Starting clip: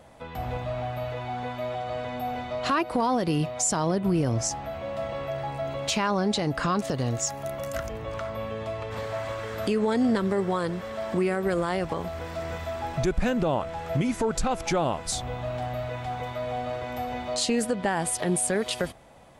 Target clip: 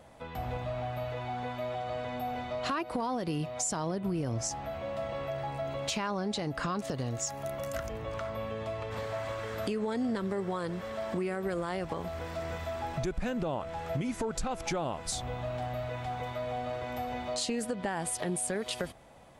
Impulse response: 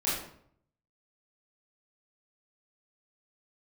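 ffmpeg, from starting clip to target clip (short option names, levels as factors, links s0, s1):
-af "acompressor=threshold=0.0398:ratio=2.5,volume=0.708"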